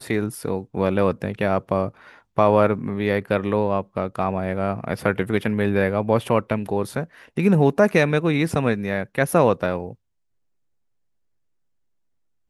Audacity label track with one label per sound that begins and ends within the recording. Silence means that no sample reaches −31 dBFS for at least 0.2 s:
2.380000	7.050000	sound
7.370000	9.920000	sound